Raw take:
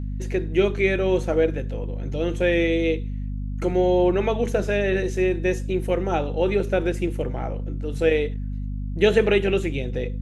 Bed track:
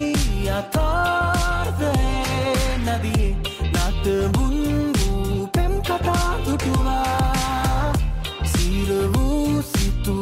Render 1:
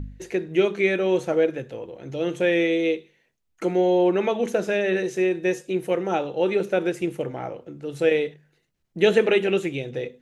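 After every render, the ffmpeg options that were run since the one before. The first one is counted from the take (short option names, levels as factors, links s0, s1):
-af "bandreject=f=50:t=h:w=4,bandreject=f=100:t=h:w=4,bandreject=f=150:t=h:w=4,bandreject=f=200:t=h:w=4,bandreject=f=250:t=h:w=4"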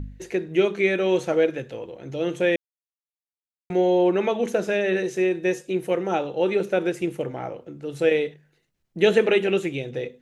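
-filter_complex "[0:a]asettb=1/sr,asplit=3[s0][s1][s2];[s0]atrim=end=0.984[s3];[s1]atrim=start=0.98:end=1.95,asetpts=PTS-STARTPTS,afade=t=in:d=0.004:c=qsin,afade=t=out:st=0.966:d=0.004:c=qsin,equalizer=f=3700:t=o:w=2.6:g=3.5[s4];[s2]atrim=start=1.946[s5];[s3][s4]acrossfade=d=0.004:c1=hsin:c2=qsin[s6];[s6][s5]acrossfade=d=0.004:c1=qsin:c2=hsin,asplit=3[s7][s8][s9];[s7]atrim=end=2.56,asetpts=PTS-STARTPTS,afade=t=out:st=2.556:d=0.004:c=hsin[s10];[s8]atrim=start=2.56:end=3.7,asetpts=PTS-STARTPTS,volume=0[s11];[s9]atrim=start=3.7,asetpts=PTS-STARTPTS,afade=t=in:d=0.004:c=hsin[s12];[s10][s11][s12]concat=n=3:v=0:a=1"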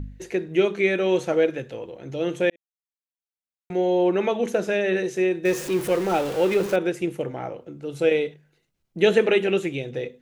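-filter_complex "[0:a]asettb=1/sr,asplit=3[s0][s1][s2];[s0]atrim=end=5.454[s3];[s1]atrim=start=5.45:end=6.76,asetpts=PTS-STARTPTS,afade=t=in:d=0.004:c=qsin,afade=t=out:st=1.306:d=0.004:c=qsin,aeval=exprs='val(0)+0.5*0.0376*sgn(val(0))':c=same[s4];[s2]atrim=start=6.756[s5];[s3][s4]acrossfade=d=0.004:c1=hsin:c2=qsin[s6];[s6][s5]acrossfade=d=0.004:c1=qsin:c2=hsin,asettb=1/sr,asplit=3[s7][s8][s9];[s7]atrim=end=7.684[s10];[s8]atrim=start=7.68:end=9.03,asetpts=PTS-STARTPTS,afade=t=in:d=0.004:c=qsin,afade=t=out:st=1.346:d=0.004:c=qsin,bandreject=f=1800:w=9.8[s11];[s9]atrim=start=9.026[s12];[s10][s11]acrossfade=d=0.004:c1=hsin:c2=qsin[s13];[s13][s12]acrossfade=d=0.004:c1=qsin:c2=hsin,asplit=2[s14][s15];[s14]atrim=end=2.5,asetpts=PTS-STARTPTS,afade=t=out:st=2.496:d=0.004:c=hsin[s16];[s15]atrim=start=2.5,asetpts=PTS-STARTPTS,afade=t=in:d=1.72[s17];[s16][s17]concat=n=2:v=0:a=1"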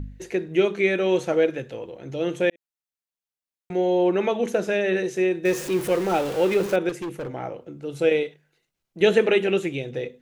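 -filter_complex "[0:a]asettb=1/sr,asplit=3[s0][s1][s2];[s0]atrim=end=6.894[s3];[s1]atrim=start=6.89:end=7.31,asetpts=PTS-STARTPTS,afade=t=in:d=0.004:c=qsin,afade=t=out:st=0.416:d=0.004:c=qsin,asoftclip=type=hard:threshold=0.0422[s4];[s2]atrim=start=7.306[s5];[s3][s4]acrossfade=d=0.004:c1=hsin:c2=qsin[s6];[s6][s5]acrossfade=d=0.004:c1=qsin:c2=hsin,asettb=1/sr,asplit=3[s7][s8][s9];[s7]atrim=end=8.234[s10];[s8]atrim=start=8.23:end=9.01,asetpts=PTS-STARTPTS,afade=t=in:d=0.004:c=qsin,afade=t=out:st=0.776:d=0.004:c=qsin,lowshelf=f=360:g=-9[s11];[s9]atrim=start=9.006[s12];[s10][s11]acrossfade=d=0.004:c1=hsin:c2=qsin[s13];[s13][s12]acrossfade=d=0.004:c1=qsin:c2=hsin"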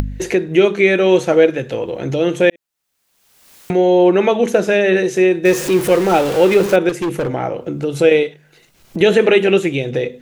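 -af "acompressor=mode=upward:threshold=0.0708:ratio=2.5,alimiter=level_in=2.82:limit=0.891:release=50:level=0:latency=1"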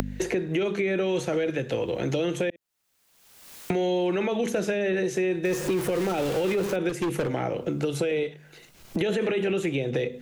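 -filter_complex "[0:a]alimiter=limit=0.376:level=0:latency=1:release=19,acrossover=split=170|590|1600[s0][s1][s2][s3];[s0]acompressor=threshold=0.0158:ratio=4[s4];[s1]acompressor=threshold=0.0398:ratio=4[s5];[s2]acompressor=threshold=0.0141:ratio=4[s6];[s3]acompressor=threshold=0.0141:ratio=4[s7];[s4][s5][s6][s7]amix=inputs=4:normalize=0"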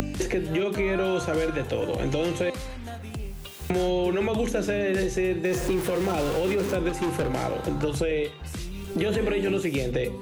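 -filter_complex "[1:a]volume=0.178[s0];[0:a][s0]amix=inputs=2:normalize=0"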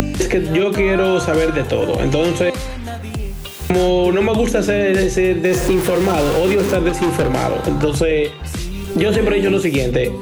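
-af "volume=3.16"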